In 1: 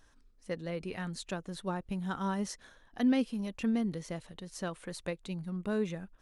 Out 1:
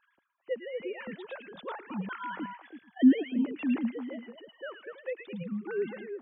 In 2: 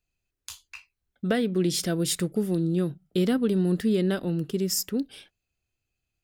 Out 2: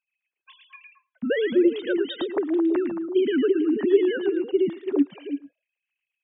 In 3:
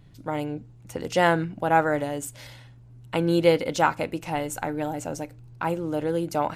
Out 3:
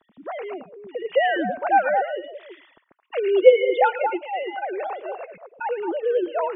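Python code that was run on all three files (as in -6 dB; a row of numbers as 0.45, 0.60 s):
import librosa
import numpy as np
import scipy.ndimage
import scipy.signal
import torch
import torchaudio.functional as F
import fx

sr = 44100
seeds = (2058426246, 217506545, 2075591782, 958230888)

y = fx.sine_speech(x, sr)
y = fx.echo_stepped(y, sr, ms=110, hz=2500.0, octaves=-1.4, feedback_pct=70, wet_db=-2.0)
y = F.gain(torch.from_numpy(y), 2.5).numpy()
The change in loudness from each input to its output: +3.0, +2.5, +3.5 LU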